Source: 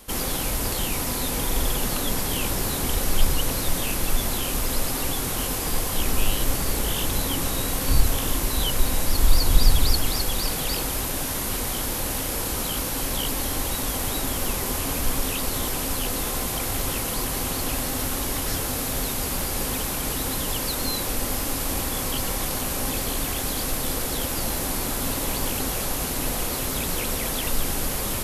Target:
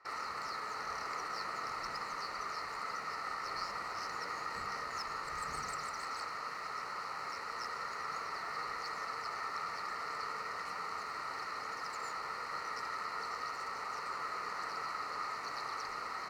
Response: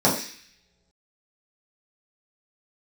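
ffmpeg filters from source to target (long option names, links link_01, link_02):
-filter_complex "[0:a]adynamicsmooth=sensitivity=5.5:basefreq=1800,asplit=3[link_01][link_02][link_03];[link_01]bandpass=frequency=730:width_type=q:width=8,volume=0dB[link_04];[link_02]bandpass=frequency=1090:width_type=q:width=8,volume=-6dB[link_05];[link_03]bandpass=frequency=2440:width_type=q:width=8,volume=-9dB[link_06];[link_04][link_05][link_06]amix=inputs=3:normalize=0,asetrate=76440,aresample=44100,asplit=2[link_07][link_08];[1:a]atrim=start_sample=2205,asetrate=32193,aresample=44100[link_09];[link_08][link_09]afir=irnorm=-1:irlink=0,volume=-30.5dB[link_10];[link_07][link_10]amix=inputs=2:normalize=0,volume=1.5dB"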